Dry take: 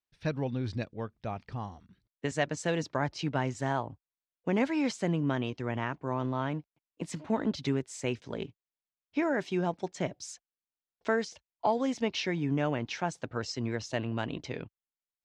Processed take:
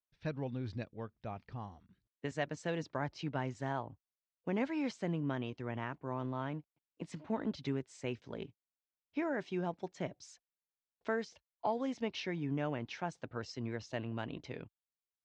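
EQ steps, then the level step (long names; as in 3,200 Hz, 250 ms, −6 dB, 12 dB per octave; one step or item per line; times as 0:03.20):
high-frequency loss of the air 82 metres
−6.5 dB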